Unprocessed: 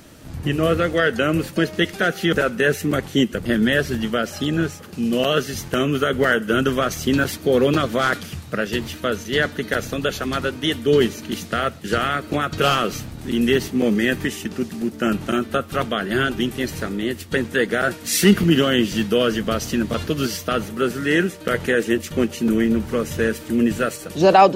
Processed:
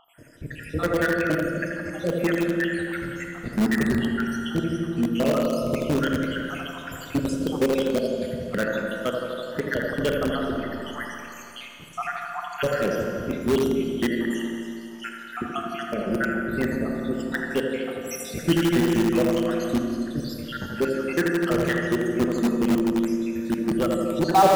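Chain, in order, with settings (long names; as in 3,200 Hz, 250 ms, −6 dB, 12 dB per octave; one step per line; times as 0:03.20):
time-frequency cells dropped at random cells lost 79%
high-shelf EQ 2,600 Hz −5 dB
on a send: bucket-brigade delay 82 ms, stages 1,024, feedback 78%, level −6 dB
on the sum: four-comb reverb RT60 2.6 s, combs from 26 ms, DRR 3 dB
in parallel at −9 dB: wrap-around overflow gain 14 dB
on the sum: level −3.5 dB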